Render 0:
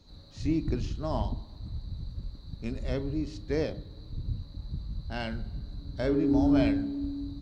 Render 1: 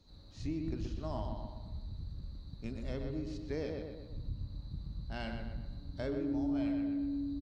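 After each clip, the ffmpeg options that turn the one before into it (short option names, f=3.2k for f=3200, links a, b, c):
-filter_complex "[0:a]asplit=2[a][b];[b]adelay=124,lowpass=f=3.1k:p=1,volume=-5dB,asplit=2[c][d];[d]adelay=124,lowpass=f=3.1k:p=1,volume=0.49,asplit=2[e][f];[f]adelay=124,lowpass=f=3.1k:p=1,volume=0.49,asplit=2[g][h];[h]adelay=124,lowpass=f=3.1k:p=1,volume=0.49,asplit=2[i][j];[j]adelay=124,lowpass=f=3.1k:p=1,volume=0.49,asplit=2[k][l];[l]adelay=124,lowpass=f=3.1k:p=1,volume=0.49[m];[c][e][g][i][k][m]amix=inputs=6:normalize=0[n];[a][n]amix=inputs=2:normalize=0,acompressor=threshold=-27dB:ratio=3,volume=-6.5dB"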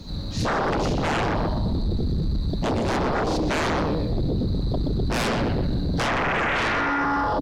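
-af "equalizer=f=180:w=1.3:g=7,aeval=exprs='0.0794*sin(PI/2*7.94*val(0)/0.0794)':c=same,volume=2dB"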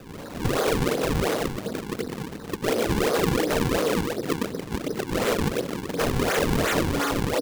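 -af "highpass=280,equalizer=f=470:t=q:w=4:g=9,equalizer=f=890:t=q:w=4:g=-9,equalizer=f=3.5k:t=q:w=4:g=4,lowpass=f=5.3k:w=0.5412,lowpass=f=5.3k:w=1.3066,acrusher=samples=40:mix=1:aa=0.000001:lfo=1:lforange=64:lforate=2.8"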